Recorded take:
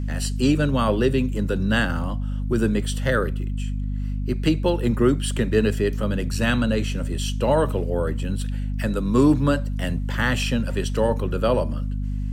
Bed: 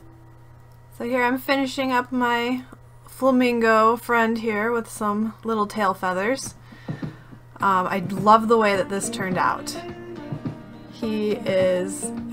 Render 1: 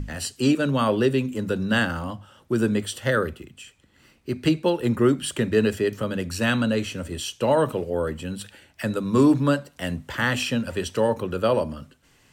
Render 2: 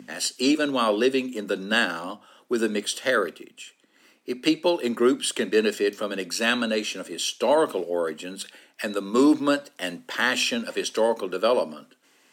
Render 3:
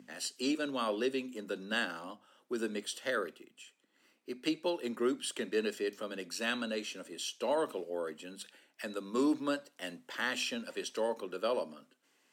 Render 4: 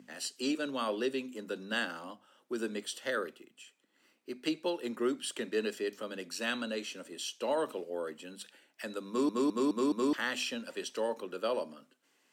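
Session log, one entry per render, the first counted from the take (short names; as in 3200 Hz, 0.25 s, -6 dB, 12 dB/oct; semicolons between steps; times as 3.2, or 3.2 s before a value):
notches 50/100/150/200/250 Hz
HPF 250 Hz 24 dB/oct; dynamic EQ 4700 Hz, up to +6 dB, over -46 dBFS, Q 0.82
gain -11.5 dB
9.08 stutter in place 0.21 s, 5 plays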